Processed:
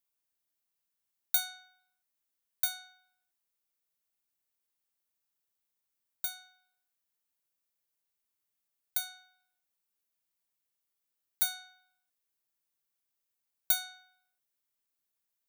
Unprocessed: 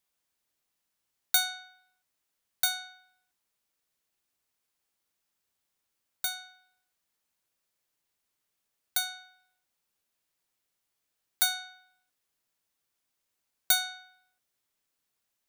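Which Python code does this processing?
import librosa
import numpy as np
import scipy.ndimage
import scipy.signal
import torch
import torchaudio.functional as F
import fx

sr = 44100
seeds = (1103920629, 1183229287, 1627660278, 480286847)

y = fx.high_shelf(x, sr, hz=11000.0, db=10.0)
y = y * 10.0 ** (-9.0 / 20.0)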